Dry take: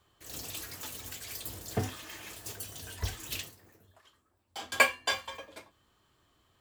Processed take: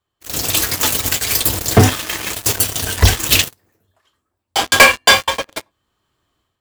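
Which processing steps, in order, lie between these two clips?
waveshaping leveller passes 5; level rider gain up to 11 dB

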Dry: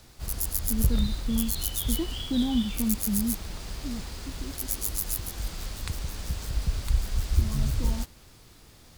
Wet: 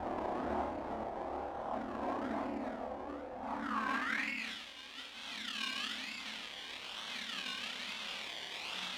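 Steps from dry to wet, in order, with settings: ring modulator 20 Hz; Paulstretch 8.6×, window 1.00 s, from 1.97 s; phase shifter stages 6, 0.56 Hz, lowest notch 200–1800 Hz; decimation with a swept rate 26×, swing 60% 1.1 Hz; on a send: flutter echo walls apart 4.7 m, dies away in 0.32 s; on the sum: band-pass sweep 720 Hz -> 3.2 kHz, 3.44–4.54 s; loudspeaker Doppler distortion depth 0.16 ms; trim +6 dB

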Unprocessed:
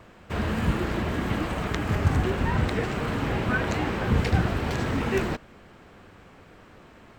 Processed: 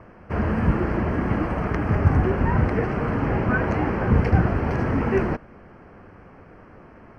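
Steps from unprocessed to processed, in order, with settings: boxcar filter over 12 samples; trim +4.5 dB

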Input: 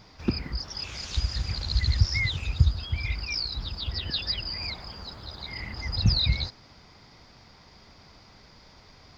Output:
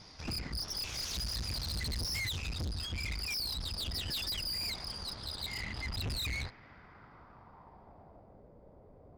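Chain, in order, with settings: low-pass sweep 6 kHz -> 550 Hz, 5.02–8.44 s; valve stage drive 34 dB, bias 0.65

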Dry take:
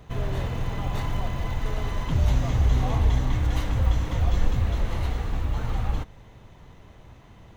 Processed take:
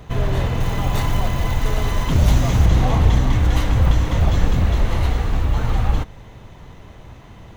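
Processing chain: one-sided wavefolder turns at -18.5 dBFS; 0.60–2.66 s: treble shelf 6.5 kHz +8.5 dB; trim +8 dB

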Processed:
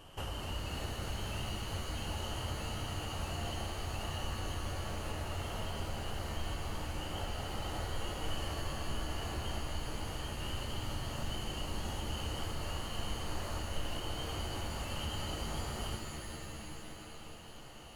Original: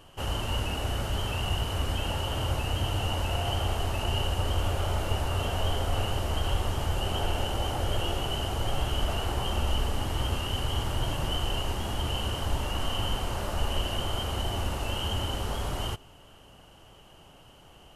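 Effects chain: compression, threshold -36 dBFS, peak gain reduction 14.5 dB; pitch-shifted reverb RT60 3.1 s, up +7 st, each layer -2 dB, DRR 3.5 dB; trim -2 dB

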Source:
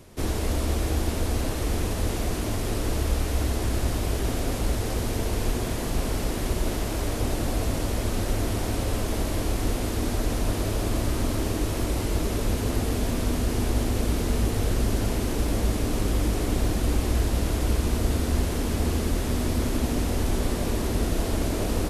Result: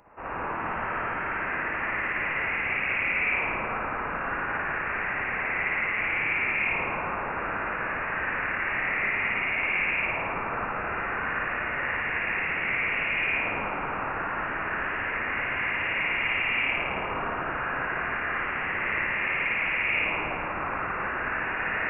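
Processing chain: LFO high-pass saw down 0.3 Hz 780–2200 Hz; spring tank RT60 1.7 s, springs 54 ms, chirp 20 ms, DRR -6.5 dB; frequency inversion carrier 3.1 kHz

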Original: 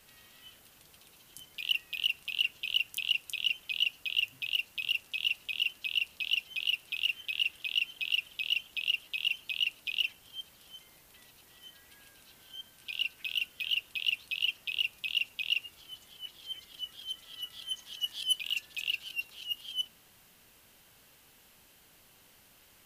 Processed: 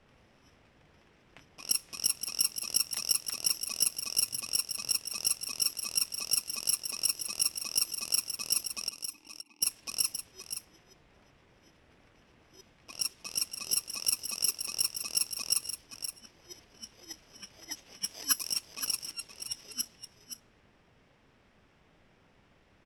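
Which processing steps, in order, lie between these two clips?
bit-reversed sample order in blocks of 32 samples; level-controlled noise filter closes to 2 kHz, open at -26 dBFS; 8.89–9.62 s: vowel filter u; delay 522 ms -10 dB; in parallel at -6 dB: saturation -26 dBFS, distortion -10 dB

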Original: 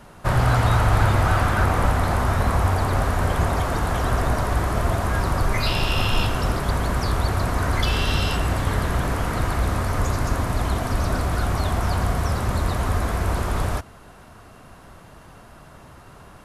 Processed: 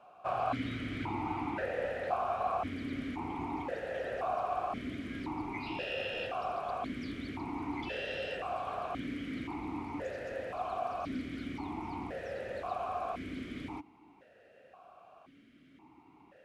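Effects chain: stepped vowel filter 1.9 Hz

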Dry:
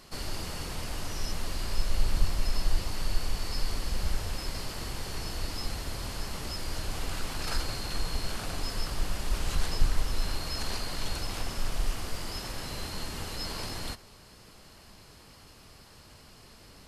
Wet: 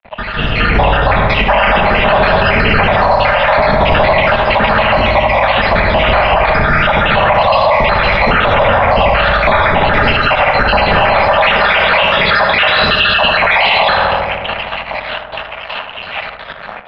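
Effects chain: random holes in the spectrogram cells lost 69%; peaking EQ 180 Hz +12 dB 1.7 oct, from 11.41 s 3.3 kHz; simulated room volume 1100 m³, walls mixed, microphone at 1.2 m; crossover distortion -50.5 dBFS; mistuned SSB -180 Hz 250–3100 Hz; resonant low shelf 480 Hz -8 dB, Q 3; filtered feedback delay 76 ms, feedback 82%, low-pass 1.4 kHz, level -6 dB; level rider gain up to 14 dB; loudness maximiser +26 dB; trim -1 dB

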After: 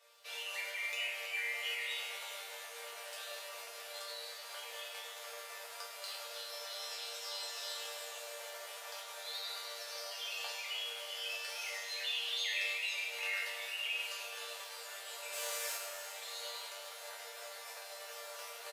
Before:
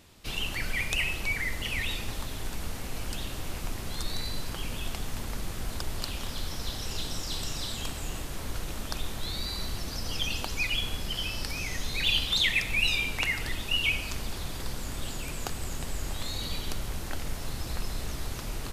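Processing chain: 15.31–15.74 s: spectral contrast reduction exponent 0.45; in parallel at +2 dB: compressor with a negative ratio -33 dBFS, ratio -1; on the sum: saturation -10 dBFS, distortion -32 dB; rippled Chebyshev high-pass 440 Hz, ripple 3 dB; chord resonator G3 minor, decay 0.57 s; frequency-shifting echo 303 ms, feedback 48%, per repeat +91 Hz, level -11.5 dB; on a send at -10 dB: reverberation RT60 2.5 s, pre-delay 20 ms; on the sum: bit-crushed delay 105 ms, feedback 35%, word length 12-bit, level -10 dB; trim +7.5 dB

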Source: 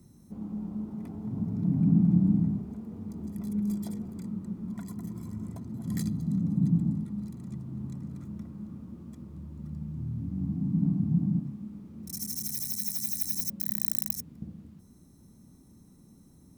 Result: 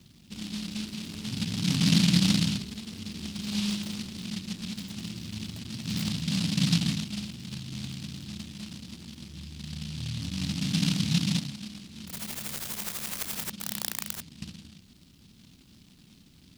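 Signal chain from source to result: delay time shaken by noise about 3.7 kHz, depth 0.37 ms

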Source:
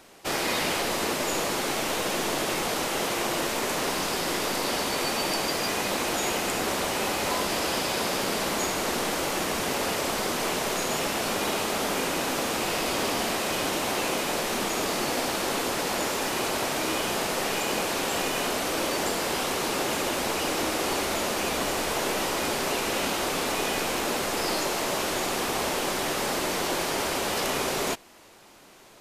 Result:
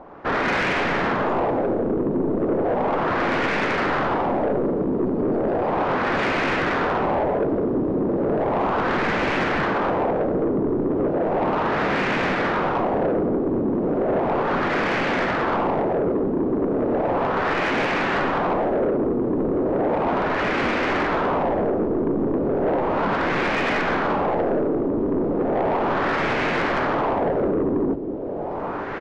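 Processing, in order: square wave that keeps the level; on a send: delay 1138 ms -10.5 dB; on the sum: LFO low-pass sine 0.35 Hz 380–2300 Hz; in parallel at 0 dB: peak limiter -17 dBFS, peak gain reduction 9 dB; on the sum: resampled via 16 kHz; harmony voices -5 st 0 dB; saturation -10.5 dBFS, distortion -15 dB; trim -5.5 dB

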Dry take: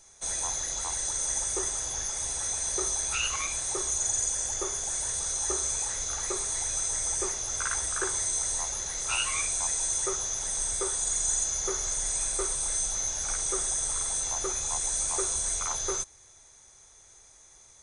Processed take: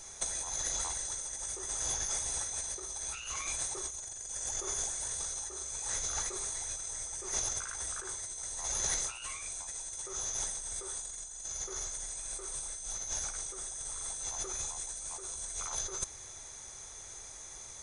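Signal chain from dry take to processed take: compressor with a negative ratio -36 dBFS, ratio -0.5

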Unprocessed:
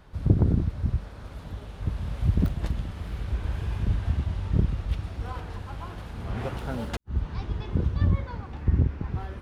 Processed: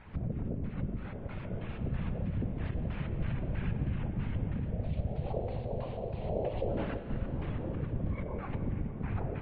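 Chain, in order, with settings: 4.65–6.69 s: FFT filter 100 Hz 0 dB, 160 Hz -29 dB, 340 Hz -7 dB, 570 Hz +11 dB, 970 Hz -10 dB, 1.4 kHz -20 dB, 4.4 kHz +4 dB, 7.3 kHz -21 dB; compression 20:1, threshold -25 dBFS, peak gain reduction 13.5 dB; peak limiter -26.5 dBFS, peak gain reduction 10.5 dB; LFO low-pass square 3.1 Hz 530–2400 Hz; whisper effect; distance through air 130 m; tape echo 176 ms, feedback 51%, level -17 dB, low-pass 4.1 kHz; reverberation RT60 4.7 s, pre-delay 11 ms, DRR 7.5 dB; careless resampling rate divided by 4×, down none, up zero stuff; MP3 24 kbps 22.05 kHz

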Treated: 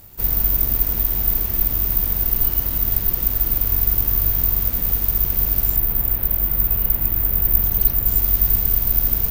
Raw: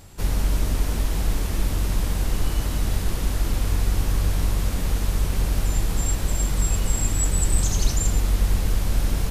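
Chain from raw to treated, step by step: 5.76–8.08 s: low-pass 2.9 kHz 12 dB/octave; careless resampling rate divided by 3×, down filtered, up zero stuff; trim -3 dB

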